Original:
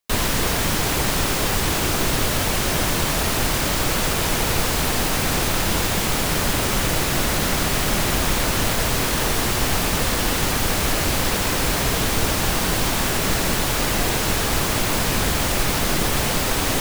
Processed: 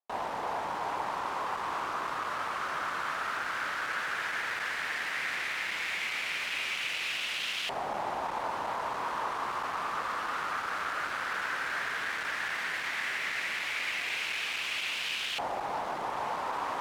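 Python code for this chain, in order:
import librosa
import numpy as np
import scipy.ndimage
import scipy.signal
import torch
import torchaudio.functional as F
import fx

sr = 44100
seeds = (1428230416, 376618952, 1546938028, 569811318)

y = np.clip(x, -10.0 ** (-17.0 / 20.0), 10.0 ** (-17.0 / 20.0))
y = fx.filter_lfo_bandpass(y, sr, shape='saw_up', hz=0.13, low_hz=790.0, high_hz=2900.0, q=3.1)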